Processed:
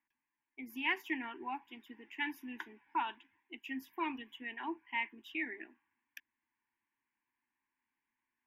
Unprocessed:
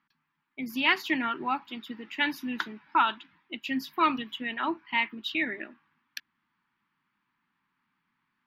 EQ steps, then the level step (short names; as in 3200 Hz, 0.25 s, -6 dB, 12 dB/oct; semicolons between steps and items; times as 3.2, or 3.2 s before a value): fixed phaser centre 860 Hz, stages 8; -8.5 dB